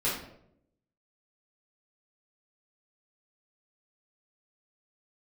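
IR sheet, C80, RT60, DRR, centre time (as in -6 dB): 7.5 dB, 0.75 s, -9.0 dB, 43 ms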